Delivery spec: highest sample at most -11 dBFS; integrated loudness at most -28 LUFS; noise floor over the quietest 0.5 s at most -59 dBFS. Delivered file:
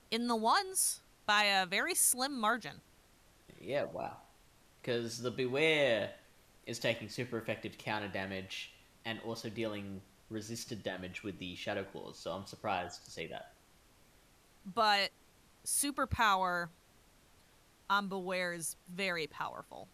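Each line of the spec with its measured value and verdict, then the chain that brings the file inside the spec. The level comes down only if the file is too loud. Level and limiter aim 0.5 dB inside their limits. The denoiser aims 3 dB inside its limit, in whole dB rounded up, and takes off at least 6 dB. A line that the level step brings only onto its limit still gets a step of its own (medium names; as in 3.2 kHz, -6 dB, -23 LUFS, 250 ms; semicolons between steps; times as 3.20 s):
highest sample -16.5 dBFS: pass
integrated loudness -35.0 LUFS: pass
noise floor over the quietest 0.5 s -65 dBFS: pass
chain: none needed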